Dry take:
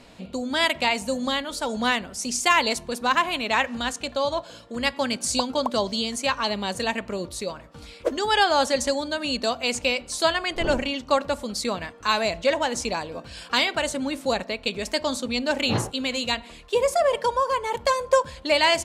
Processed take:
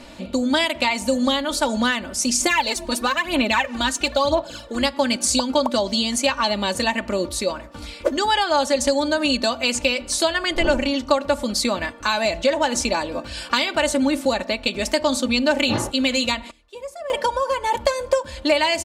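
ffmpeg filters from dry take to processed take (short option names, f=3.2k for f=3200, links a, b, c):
-filter_complex "[0:a]asettb=1/sr,asplit=3[a][b][c];[a]atrim=end=2.404[d];[b]atrim=start=2.4:end=4.83,asetpts=PTS-STARTPTS,afade=t=in:d=0.004:c=qsin,afade=t=out:st=2.426:d=0.004:c=qsin,aphaser=in_gain=1:out_gain=1:delay=3.2:decay=0.61:speed=1:type=sinusoidal[e];[c]atrim=start=4.826[f];[d][e]acrossfade=d=0.004:c1=hsin:c2=qsin[g];[g][f]acrossfade=d=0.004:c1=qsin:c2=hsin,asplit=3[h][i][j];[h]atrim=end=16.51,asetpts=PTS-STARTPTS,afade=t=out:st=16.39:d=0.12:c=log:silence=0.0944061[k];[i]atrim=start=16.51:end=17.1,asetpts=PTS-STARTPTS,volume=-20.5dB[l];[j]atrim=start=17.1,asetpts=PTS-STARTPTS,afade=t=in:d=0.12:c=log:silence=0.0944061[m];[k][l][m]concat=n=3:v=0:a=1,acompressor=threshold=-24dB:ratio=6,aecho=1:1:3.4:0.56,volume=6.5dB"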